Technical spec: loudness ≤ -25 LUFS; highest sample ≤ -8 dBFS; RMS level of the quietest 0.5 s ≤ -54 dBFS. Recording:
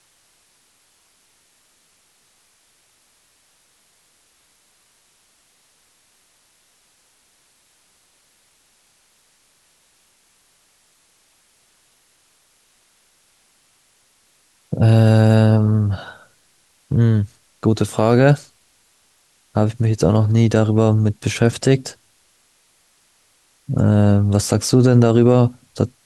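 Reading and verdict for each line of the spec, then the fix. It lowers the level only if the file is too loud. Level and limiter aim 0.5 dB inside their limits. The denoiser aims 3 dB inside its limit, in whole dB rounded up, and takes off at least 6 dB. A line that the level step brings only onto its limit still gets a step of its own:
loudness -16.5 LUFS: fail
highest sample -2.5 dBFS: fail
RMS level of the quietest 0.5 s -59 dBFS: pass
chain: trim -9 dB

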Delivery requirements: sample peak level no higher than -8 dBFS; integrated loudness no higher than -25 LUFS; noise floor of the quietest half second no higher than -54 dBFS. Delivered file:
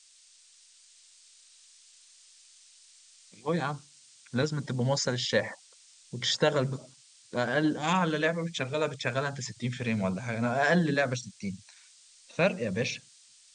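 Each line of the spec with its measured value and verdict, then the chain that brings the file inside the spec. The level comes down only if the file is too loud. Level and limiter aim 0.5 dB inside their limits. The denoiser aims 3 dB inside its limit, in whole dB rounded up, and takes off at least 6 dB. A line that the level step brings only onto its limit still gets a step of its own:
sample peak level -10.5 dBFS: pass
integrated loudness -29.5 LUFS: pass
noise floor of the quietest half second -59 dBFS: pass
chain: none needed

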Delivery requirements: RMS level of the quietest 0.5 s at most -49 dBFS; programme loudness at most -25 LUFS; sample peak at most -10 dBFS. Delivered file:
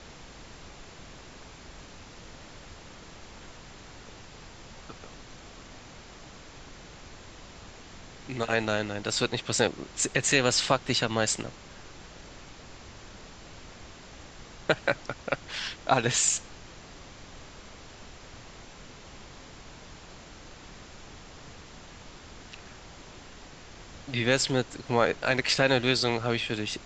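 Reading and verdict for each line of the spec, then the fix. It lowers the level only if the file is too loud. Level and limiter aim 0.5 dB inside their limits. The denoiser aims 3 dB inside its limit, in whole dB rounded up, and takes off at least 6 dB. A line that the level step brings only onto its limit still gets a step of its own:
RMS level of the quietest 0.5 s -47 dBFS: fail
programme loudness -27.0 LUFS: pass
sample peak -7.5 dBFS: fail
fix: noise reduction 6 dB, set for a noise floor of -47 dBFS; peak limiter -10.5 dBFS

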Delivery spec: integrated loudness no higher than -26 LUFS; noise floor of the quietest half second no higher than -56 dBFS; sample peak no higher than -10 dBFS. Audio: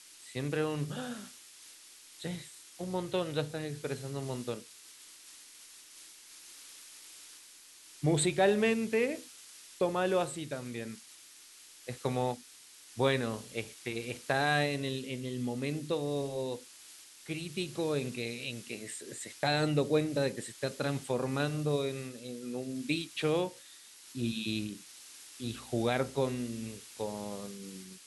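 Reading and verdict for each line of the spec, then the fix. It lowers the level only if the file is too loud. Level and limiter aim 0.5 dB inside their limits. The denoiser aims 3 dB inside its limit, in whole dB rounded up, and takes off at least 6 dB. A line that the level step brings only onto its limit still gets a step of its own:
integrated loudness -34.0 LUFS: pass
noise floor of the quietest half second -55 dBFS: fail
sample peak -15.5 dBFS: pass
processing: noise reduction 6 dB, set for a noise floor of -55 dBFS

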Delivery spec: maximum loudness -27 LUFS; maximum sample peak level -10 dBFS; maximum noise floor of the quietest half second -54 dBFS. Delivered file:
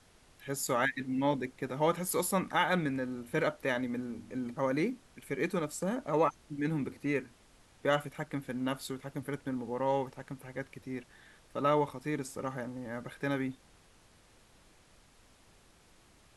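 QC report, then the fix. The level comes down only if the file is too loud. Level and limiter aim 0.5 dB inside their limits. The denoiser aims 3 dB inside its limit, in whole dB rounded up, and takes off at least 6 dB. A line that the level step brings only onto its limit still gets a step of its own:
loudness -34.0 LUFS: pass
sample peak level -14.5 dBFS: pass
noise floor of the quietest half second -62 dBFS: pass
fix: none needed

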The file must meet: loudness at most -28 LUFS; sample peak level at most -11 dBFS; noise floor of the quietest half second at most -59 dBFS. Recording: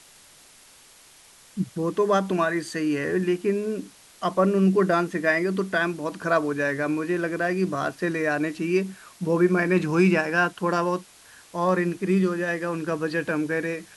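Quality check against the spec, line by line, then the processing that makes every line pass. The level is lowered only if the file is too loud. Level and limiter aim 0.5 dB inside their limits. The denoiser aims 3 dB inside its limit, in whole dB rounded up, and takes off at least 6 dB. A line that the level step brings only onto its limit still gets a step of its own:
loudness -24.5 LUFS: fail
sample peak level -8.5 dBFS: fail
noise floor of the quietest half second -52 dBFS: fail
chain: noise reduction 6 dB, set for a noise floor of -52 dBFS; trim -4 dB

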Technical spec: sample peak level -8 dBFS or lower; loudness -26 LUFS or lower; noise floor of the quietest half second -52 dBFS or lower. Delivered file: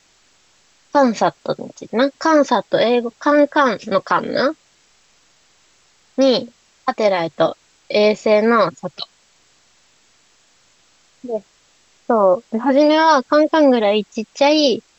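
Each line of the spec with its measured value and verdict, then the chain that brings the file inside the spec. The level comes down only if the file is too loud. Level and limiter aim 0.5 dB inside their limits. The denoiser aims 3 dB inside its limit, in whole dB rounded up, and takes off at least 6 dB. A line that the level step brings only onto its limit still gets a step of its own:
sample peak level -4.0 dBFS: fail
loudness -16.5 LUFS: fail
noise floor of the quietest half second -56 dBFS: pass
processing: trim -10 dB

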